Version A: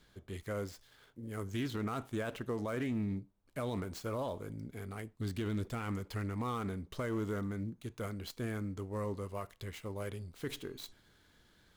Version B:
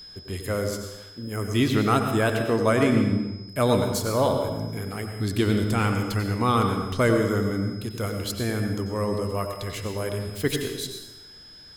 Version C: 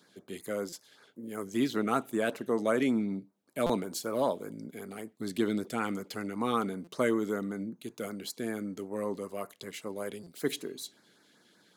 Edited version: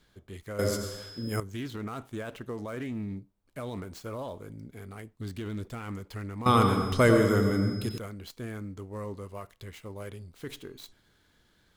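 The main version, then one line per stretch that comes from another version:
A
0.59–1.4 from B
6.46–7.98 from B
not used: C

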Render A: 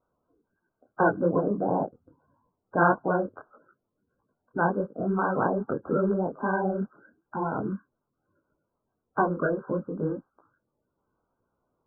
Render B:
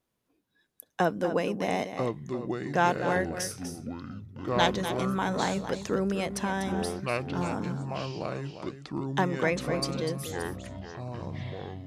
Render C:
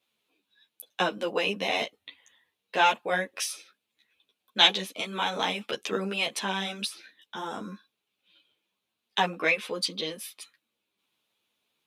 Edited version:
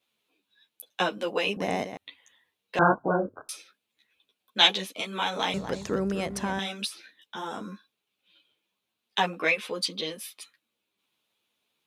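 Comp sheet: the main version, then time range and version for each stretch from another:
C
1.57–1.97 from B
2.79–3.49 from A
5.54–6.59 from B

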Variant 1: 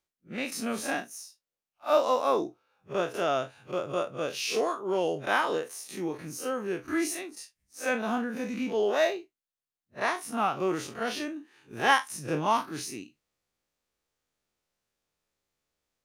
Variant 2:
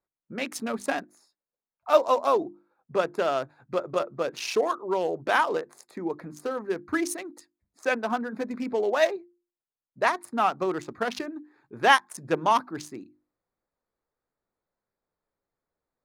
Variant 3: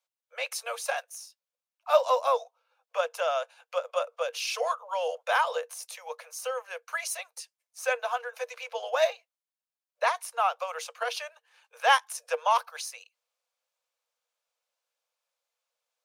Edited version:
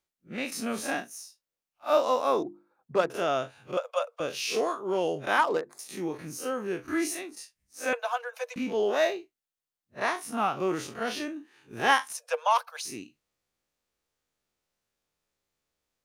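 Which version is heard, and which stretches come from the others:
1
2.43–3.1 from 2
3.77–4.2 from 3
5.38–5.79 from 2
7.93–8.56 from 3
12.12–12.85 from 3

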